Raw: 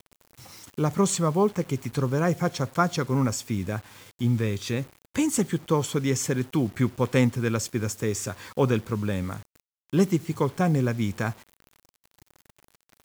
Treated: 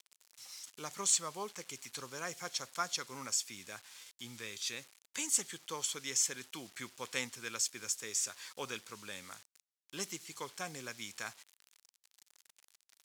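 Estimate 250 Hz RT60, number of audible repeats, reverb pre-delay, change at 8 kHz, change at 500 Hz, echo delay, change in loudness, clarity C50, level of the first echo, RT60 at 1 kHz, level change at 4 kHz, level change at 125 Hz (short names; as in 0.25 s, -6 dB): none, none, none, -0.5 dB, -20.5 dB, none, -11.0 dB, none, none, none, -2.0 dB, -31.0 dB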